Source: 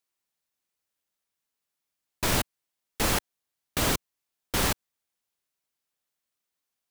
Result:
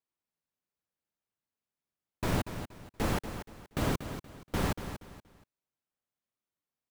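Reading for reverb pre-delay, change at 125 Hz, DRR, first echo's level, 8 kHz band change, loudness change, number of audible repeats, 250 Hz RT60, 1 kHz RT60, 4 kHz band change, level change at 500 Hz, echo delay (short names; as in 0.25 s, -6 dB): none, 0.0 dB, none, -10.0 dB, -14.0 dB, -7.0 dB, 3, none, none, -11.5 dB, -3.0 dB, 0.237 s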